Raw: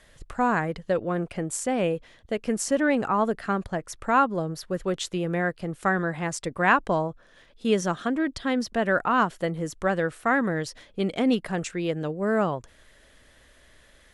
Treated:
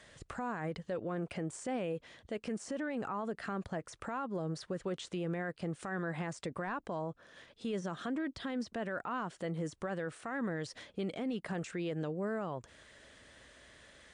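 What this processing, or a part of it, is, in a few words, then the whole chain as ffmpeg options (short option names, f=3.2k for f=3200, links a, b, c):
podcast mastering chain: -af "highpass=77,deesser=0.95,acompressor=threshold=-33dB:ratio=2.5,alimiter=level_in=5dB:limit=-24dB:level=0:latency=1:release=24,volume=-5dB" -ar 22050 -c:a libmp3lame -b:a 96k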